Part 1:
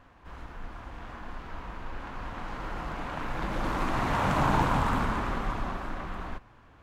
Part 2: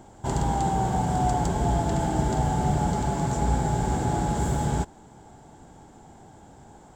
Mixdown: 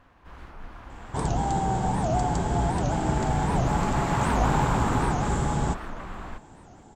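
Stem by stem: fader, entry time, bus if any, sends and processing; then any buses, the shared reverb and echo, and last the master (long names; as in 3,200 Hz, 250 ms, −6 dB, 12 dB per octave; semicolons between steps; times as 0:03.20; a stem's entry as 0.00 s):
−1.0 dB, 0.00 s, no send, no processing
−1.0 dB, 0.90 s, no send, low-pass filter 8,800 Hz 24 dB per octave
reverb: not used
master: wow of a warped record 78 rpm, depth 250 cents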